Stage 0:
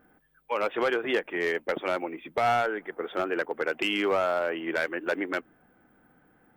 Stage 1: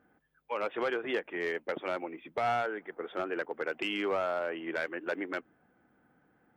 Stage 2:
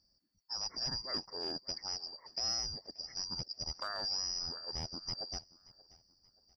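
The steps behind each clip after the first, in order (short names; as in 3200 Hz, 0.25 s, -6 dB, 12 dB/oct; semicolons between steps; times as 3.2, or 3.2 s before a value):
HPF 49 Hz; high shelf 7900 Hz -9 dB; gain -5.5 dB
four-band scrambler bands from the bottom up 2341; feedback echo 0.579 s, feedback 39%, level -21.5 dB; gain -6 dB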